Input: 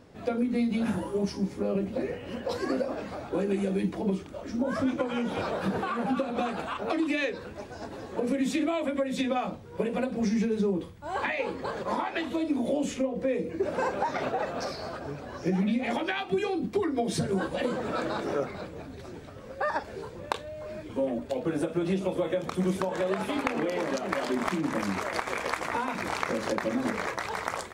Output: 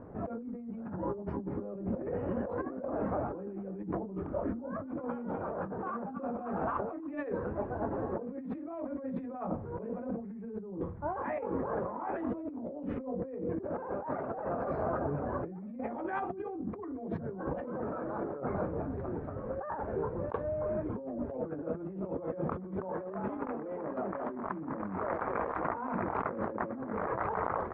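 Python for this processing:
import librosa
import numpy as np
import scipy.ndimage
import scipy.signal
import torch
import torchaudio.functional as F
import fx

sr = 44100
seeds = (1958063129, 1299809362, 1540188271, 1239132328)

y = scipy.signal.sosfilt(scipy.signal.butter(4, 1300.0, 'lowpass', fs=sr, output='sos'), x)
y = fx.over_compress(y, sr, threshold_db=-37.0, ratio=-1.0)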